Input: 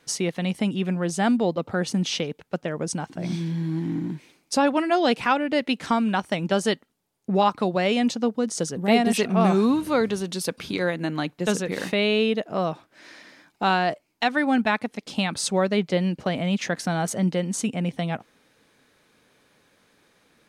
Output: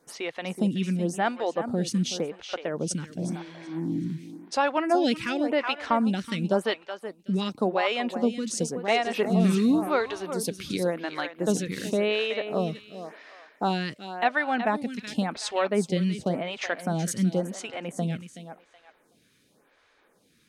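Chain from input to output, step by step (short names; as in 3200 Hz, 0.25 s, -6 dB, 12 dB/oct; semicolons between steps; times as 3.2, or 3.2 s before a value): thinning echo 0.374 s, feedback 24%, high-pass 310 Hz, level -9.5 dB; photocell phaser 0.92 Hz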